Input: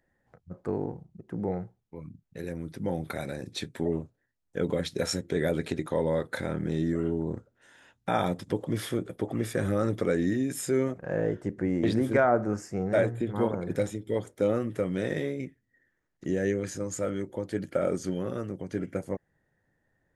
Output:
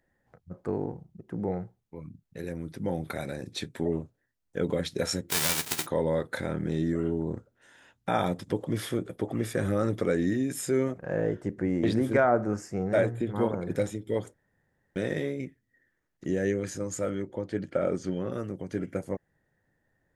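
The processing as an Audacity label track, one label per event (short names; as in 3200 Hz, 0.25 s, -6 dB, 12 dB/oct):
5.290000	5.850000	spectral whitening exponent 0.1
14.340000	14.960000	room tone
17.150000	18.320000	air absorption 76 m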